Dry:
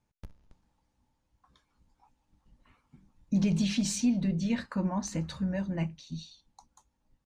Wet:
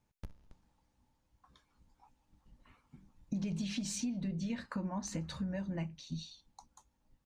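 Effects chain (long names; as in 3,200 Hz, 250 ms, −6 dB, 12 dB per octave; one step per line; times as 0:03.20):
downward compressor 5 to 1, threshold −35 dBFS, peak gain reduction 12 dB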